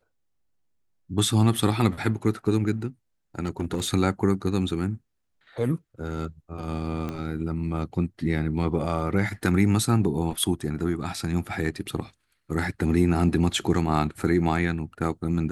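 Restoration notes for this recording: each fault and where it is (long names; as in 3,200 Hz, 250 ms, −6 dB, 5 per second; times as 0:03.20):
0:03.43–0:03.89: clipping −21 dBFS
0:07.09: click −19 dBFS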